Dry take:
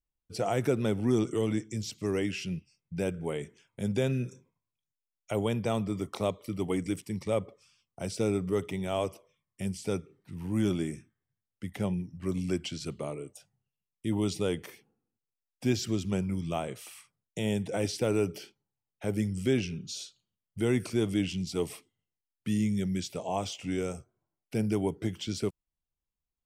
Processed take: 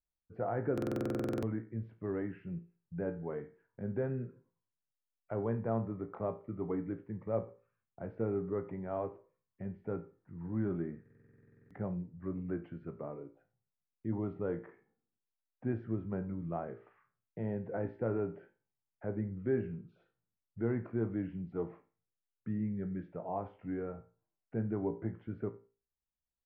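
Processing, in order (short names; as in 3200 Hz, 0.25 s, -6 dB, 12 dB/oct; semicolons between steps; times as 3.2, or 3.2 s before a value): Chebyshev low-pass 1700 Hz, order 4; resonator 57 Hz, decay 0.35 s, harmonics all, mix 70%; on a send: feedback echo 90 ms, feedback 16%, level -22 dB; on the sum: stuck buffer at 0.73/11.01, samples 2048, times 14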